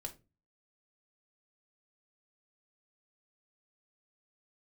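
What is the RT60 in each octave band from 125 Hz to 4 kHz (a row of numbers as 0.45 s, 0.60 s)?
0.55 s, 0.45 s, 0.35 s, 0.20 s, 0.20 s, 0.20 s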